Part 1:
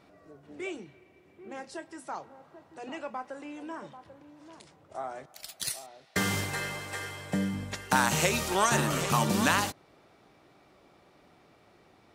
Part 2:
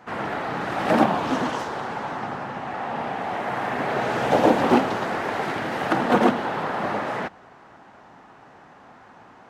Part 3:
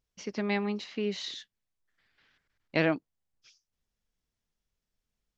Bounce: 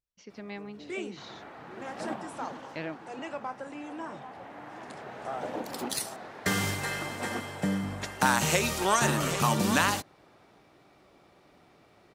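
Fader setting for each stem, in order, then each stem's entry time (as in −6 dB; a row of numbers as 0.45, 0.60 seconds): +0.5, −18.5, −11.0 decibels; 0.30, 1.10, 0.00 seconds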